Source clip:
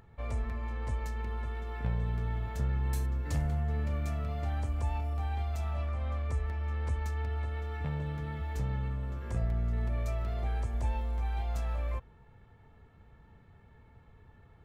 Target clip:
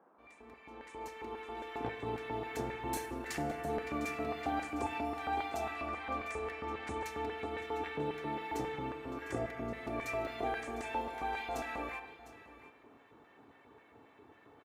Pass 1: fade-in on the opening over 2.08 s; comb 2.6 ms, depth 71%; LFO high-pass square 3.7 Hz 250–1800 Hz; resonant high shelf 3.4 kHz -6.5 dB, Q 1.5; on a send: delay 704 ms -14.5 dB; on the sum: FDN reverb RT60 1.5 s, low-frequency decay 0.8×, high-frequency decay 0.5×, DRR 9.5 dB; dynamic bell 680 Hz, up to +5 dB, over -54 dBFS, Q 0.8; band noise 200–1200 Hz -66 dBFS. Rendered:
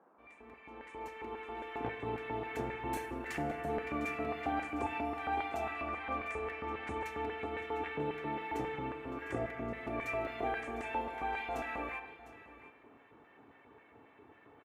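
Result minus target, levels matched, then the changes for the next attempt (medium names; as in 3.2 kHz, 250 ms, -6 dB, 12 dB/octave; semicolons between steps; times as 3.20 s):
8 kHz band -8.0 dB
remove: resonant high shelf 3.4 kHz -6.5 dB, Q 1.5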